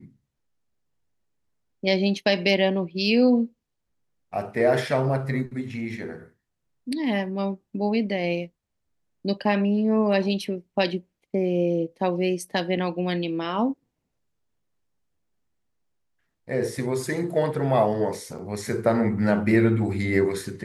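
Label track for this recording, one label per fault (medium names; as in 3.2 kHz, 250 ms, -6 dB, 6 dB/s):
18.380000	18.390000	dropout 5.5 ms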